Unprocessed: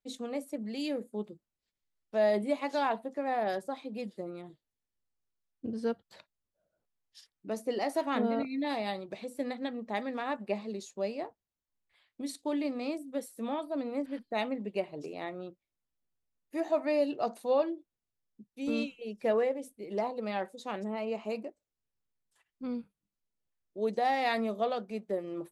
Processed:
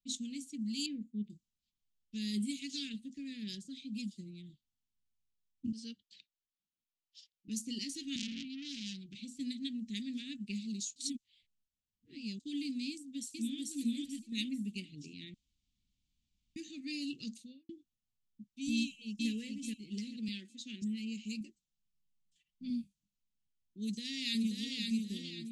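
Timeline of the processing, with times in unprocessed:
0.86–1.30 s: low-pass 1.9 kHz
5.72–7.48 s: three-band isolator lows -17 dB, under 360 Hz, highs -14 dB, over 7.3 kHz
8.16–9.20 s: transformer saturation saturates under 2.5 kHz
10.96–12.40 s: reverse
12.90–13.60 s: echo throw 440 ms, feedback 30%, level -0.5 dB
15.34–16.56 s: room tone
17.28–17.69 s: studio fade out
18.76–19.30 s: echo throw 430 ms, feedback 30%, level -3 dB
20.28–20.82 s: steep high-pass 210 Hz
21.40–22.70 s: comb 5.5 ms
23.81–24.77 s: echo throw 530 ms, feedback 40%, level -3.5 dB
whole clip: elliptic band-stop 240–2900 Hz, stop band 70 dB; level-controlled noise filter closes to 2.8 kHz, open at -35 dBFS; peaking EQ 7.1 kHz +13 dB 0.98 oct; trim +1.5 dB

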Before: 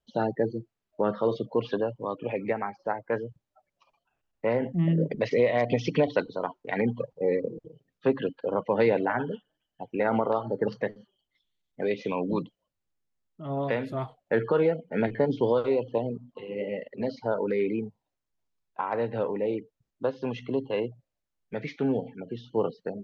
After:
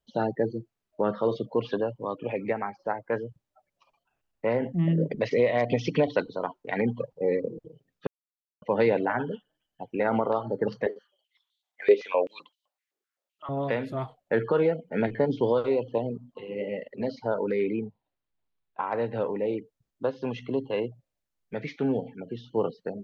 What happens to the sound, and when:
8.07–8.62 s: mute
10.86–13.49 s: step-sequenced high-pass 7.8 Hz 400–3700 Hz
17.64–18.83 s: steep low-pass 4.3 kHz

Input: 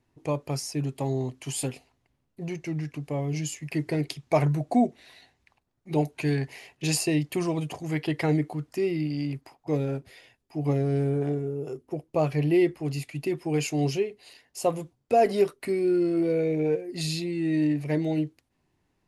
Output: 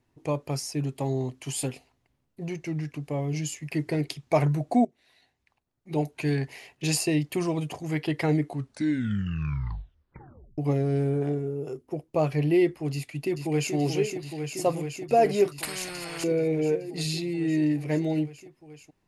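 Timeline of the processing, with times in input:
4.85–6.38 s: fade in, from -17.5 dB
8.43 s: tape stop 2.15 s
12.93–13.74 s: echo throw 430 ms, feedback 85%, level -6 dB
15.58–16.24 s: spectrum-flattening compressor 4:1

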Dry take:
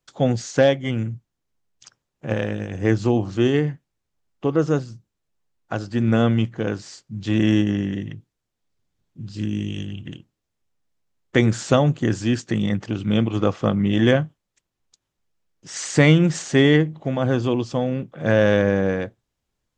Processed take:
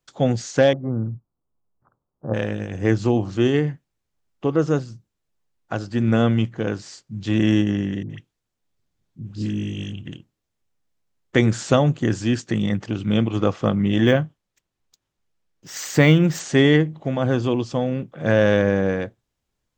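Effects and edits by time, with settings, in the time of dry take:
0.73–2.34 s: steep low-pass 1.3 kHz 48 dB/octave
8.03–9.93 s: phase dispersion highs, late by 70 ms, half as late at 800 Hz
14.07–16.40 s: decimation joined by straight lines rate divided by 2×

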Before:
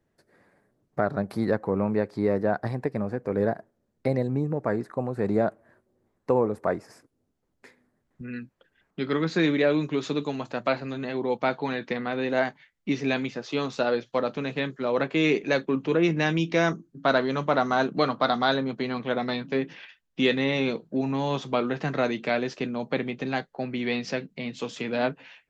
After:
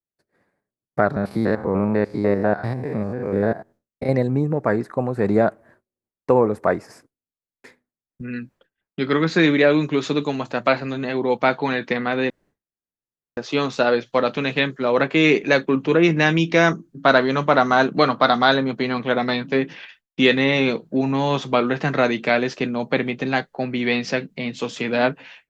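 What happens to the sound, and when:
1.16–4.09 s: spectrogram pixelated in time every 100 ms
12.30–13.37 s: room tone
14.19–14.64 s: peaking EQ 3.2 kHz +5 dB 1.1 oct
whole clip: expander -52 dBFS; dynamic bell 1.8 kHz, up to +3 dB, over -37 dBFS, Q 0.83; trim +6 dB

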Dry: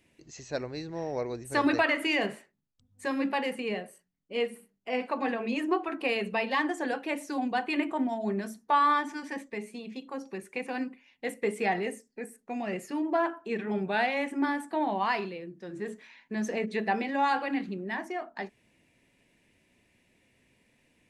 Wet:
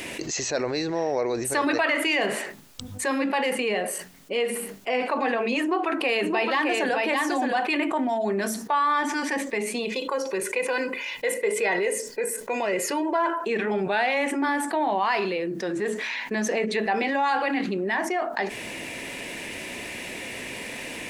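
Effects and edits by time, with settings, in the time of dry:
5.61–7.67 s: delay 615 ms -5 dB
9.85–13.44 s: comb 2 ms
whole clip: tone controls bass -12 dB, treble 0 dB; level flattener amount 70%

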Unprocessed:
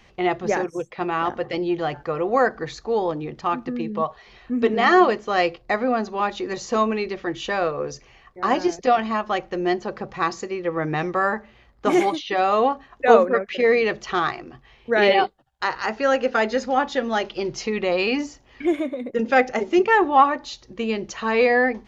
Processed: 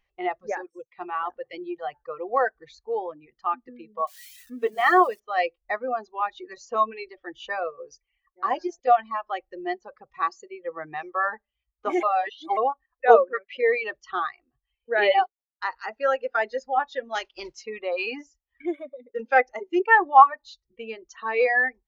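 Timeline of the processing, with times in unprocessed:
4.07–5.20 s: zero-crossing glitches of -22 dBFS
12.03–12.57 s: reverse
17.14–17.61 s: spectral contrast reduction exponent 0.62
whole clip: reverb removal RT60 1.3 s; peaking EQ 170 Hz -13.5 dB 2.5 oct; spectral contrast expander 1.5:1; trim +3 dB

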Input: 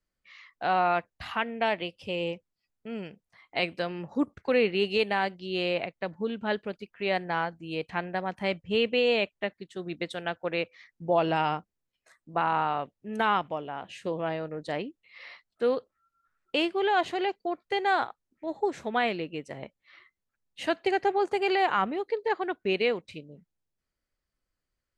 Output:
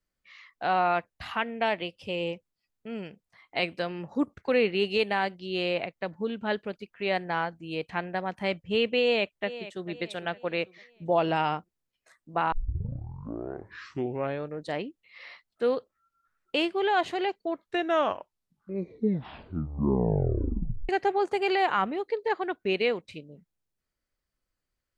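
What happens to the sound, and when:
9.01–9.88 s: echo throw 450 ms, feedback 40%, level -14.5 dB
12.52 s: tape start 2.05 s
17.34 s: tape stop 3.55 s

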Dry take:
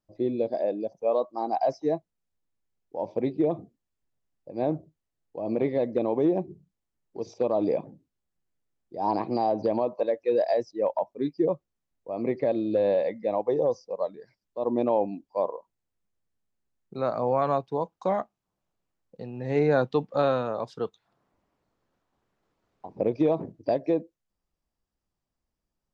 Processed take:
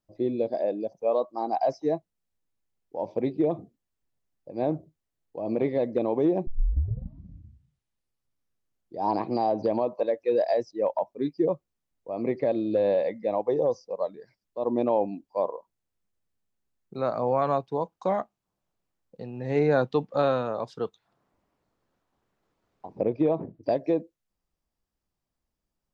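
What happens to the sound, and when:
6.47 s: tape start 2.53 s
23.03–23.63 s: distance through air 250 m

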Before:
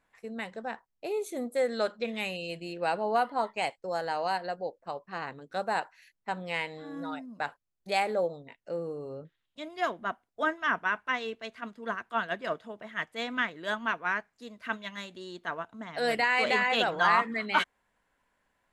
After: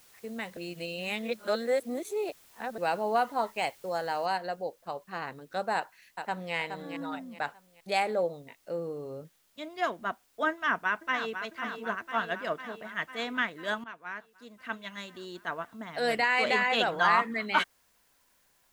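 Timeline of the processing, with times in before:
0.57–2.78 s: reverse
4.26 s: noise floor step -59 dB -69 dB
5.75–6.54 s: echo throw 420 ms, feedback 35%, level -7 dB
10.51–11.42 s: echo throw 500 ms, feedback 70%, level -8.5 dB
13.84–15.17 s: fade in linear, from -16 dB

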